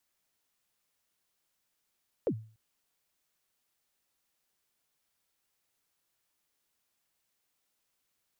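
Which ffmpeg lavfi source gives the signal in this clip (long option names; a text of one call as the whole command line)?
ffmpeg -f lavfi -i "aevalsrc='0.0708*pow(10,-3*t/0.41)*sin(2*PI*(560*0.07/log(110/560)*(exp(log(110/560)*min(t,0.07)/0.07)-1)+110*max(t-0.07,0)))':duration=0.29:sample_rate=44100" out.wav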